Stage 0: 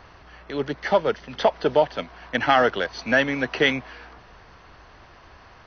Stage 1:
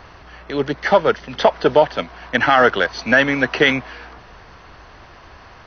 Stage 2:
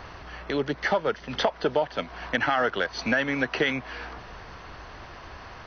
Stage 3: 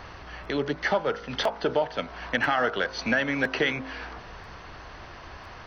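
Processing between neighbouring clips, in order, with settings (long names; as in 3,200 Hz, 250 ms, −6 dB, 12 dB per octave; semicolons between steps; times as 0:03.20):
dynamic equaliser 1,400 Hz, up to +4 dB, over −31 dBFS, Q 1.5; boost into a limiter +7 dB; level −1 dB
downward compressor 2.5 to 1, threshold −26 dBFS, peak gain reduction 12.5 dB
hum removal 52.91 Hz, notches 29; regular buffer underruns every 1.00 s, samples 512, repeat, from 0:00.43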